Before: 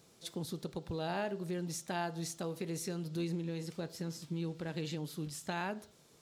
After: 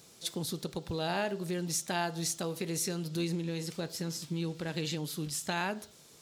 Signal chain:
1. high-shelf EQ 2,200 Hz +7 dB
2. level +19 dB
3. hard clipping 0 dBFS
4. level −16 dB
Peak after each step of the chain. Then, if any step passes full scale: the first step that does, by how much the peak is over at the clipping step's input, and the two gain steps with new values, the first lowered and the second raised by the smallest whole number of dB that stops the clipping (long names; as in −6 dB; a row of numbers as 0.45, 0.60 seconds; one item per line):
−21.0, −2.0, −2.0, −18.0 dBFS
no step passes full scale